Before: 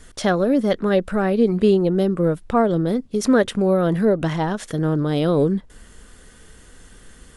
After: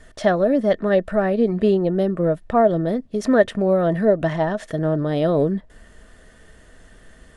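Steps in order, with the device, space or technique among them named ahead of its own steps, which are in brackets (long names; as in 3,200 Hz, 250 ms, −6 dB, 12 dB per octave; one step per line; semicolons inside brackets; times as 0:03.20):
inside a helmet (high-shelf EQ 5,300 Hz −9.5 dB; hollow resonant body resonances 640/1,800 Hz, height 13 dB, ringing for 50 ms)
level −2 dB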